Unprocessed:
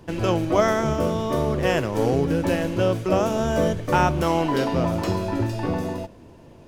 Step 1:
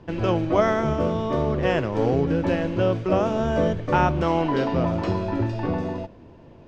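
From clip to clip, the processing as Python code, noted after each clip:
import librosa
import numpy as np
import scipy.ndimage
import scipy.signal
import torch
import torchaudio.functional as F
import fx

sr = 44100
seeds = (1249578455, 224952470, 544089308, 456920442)

y = fx.air_absorb(x, sr, metres=160.0)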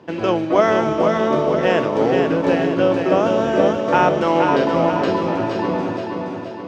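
y = scipy.signal.sosfilt(scipy.signal.butter(2, 230.0, 'highpass', fs=sr, output='sos'), x)
y = fx.echo_feedback(y, sr, ms=475, feedback_pct=51, wet_db=-4.5)
y = F.gain(torch.from_numpy(y), 5.0).numpy()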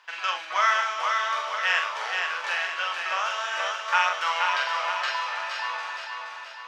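y = scipy.signal.sosfilt(scipy.signal.butter(4, 1200.0, 'highpass', fs=sr, output='sos'), x)
y = fx.doubler(y, sr, ms=44.0, db=-5)
y = F.gain(torch.from_numpy(y), 1.5).numpy()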